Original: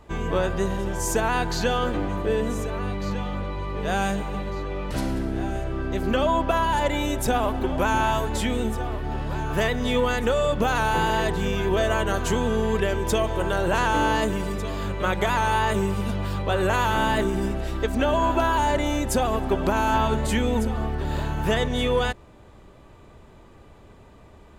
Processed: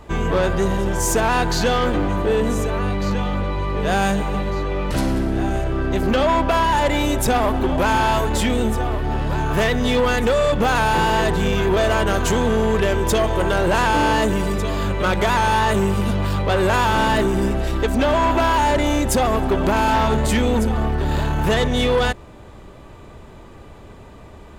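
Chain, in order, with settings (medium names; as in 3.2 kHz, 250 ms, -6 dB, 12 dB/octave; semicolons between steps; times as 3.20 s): saturation -20.5 dBFS, distortion -13 dB; trim +8 dB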